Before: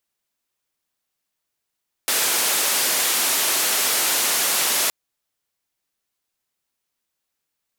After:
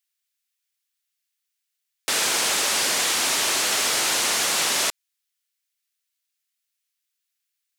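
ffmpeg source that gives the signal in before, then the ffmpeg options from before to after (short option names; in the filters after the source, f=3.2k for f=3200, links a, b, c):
-f lavfi -i "anoisesrc=c=white:d=2.82:r=44100:seed=1,highpass=f=310,lowpass=f=14000,volume=-13.6dB"
-filter_complex "[0:a]acrossover=split=9700[a][b];[b]acompressor=threshold=-39dB:ratio=4:attack=1:release=60[c];[a][c]amix=inputs=2:normalize=0,lowshelf=f=76:g=11.5,acrossover=split=1500[d][e];[d]acrusher=bits=5:mix=0:aa=0.5[f];[f][e]amix=inputs=2:normalize=0"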